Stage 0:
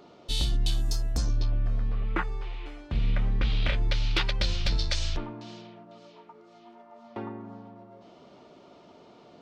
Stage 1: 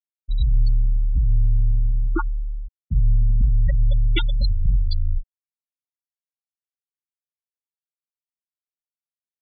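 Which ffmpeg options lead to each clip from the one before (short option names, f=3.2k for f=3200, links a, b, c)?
-af "afftfilt=real='re*gte(hypot(re,im),0.158)':imag='im*gte(hypot(re,im),0.158)':win_size=1024:overlap=0.75,volume=8.5dB"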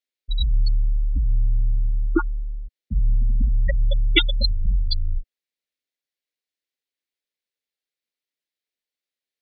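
-af "equalizer=f=125:t=o:w=1:g=-10,equalizer=f=250:t=o:w=1:g=7,equalizer=f=500:t=o:w=1:g=10,equalizer=f=1k:t=o:w=1:g=-7,equalizer=f=2k:t=o:w=1:g=10,equalizer=f=4k:t=o:w=1:g=10,volume=-1dB"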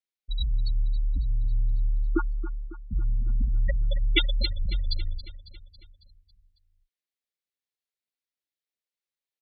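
-af "aecho=1:1:275|550|825|1100|1375|1650:0.188|0.105|0.0591|0.0331|0.0185|0.0104,volume=-6dB"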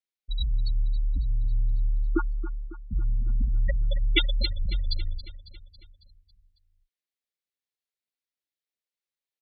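-af anull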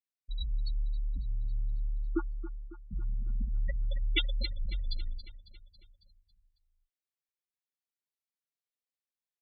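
-af "flanger=delay=3.9:depth=2.1:regen=41:speed=0.22:shape=sinusoidal,volume=-3.5dB"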